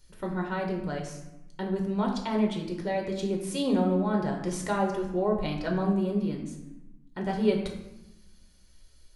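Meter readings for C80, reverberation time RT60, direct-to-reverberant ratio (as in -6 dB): 8.0 dB, 0.95 s, 0.0 dB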